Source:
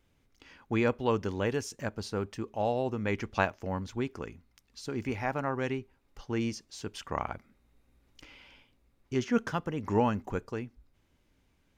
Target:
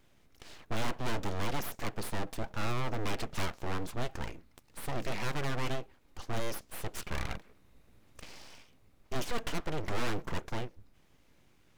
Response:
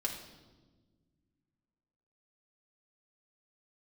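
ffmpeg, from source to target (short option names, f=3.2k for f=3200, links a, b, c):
-af "aeval=exprs='abs(val(0))':c=same,aeval=exprs='(tanh(25.1*val(0)+0.25)-tanh(0.25))/25.1':c=same,volume=7dB"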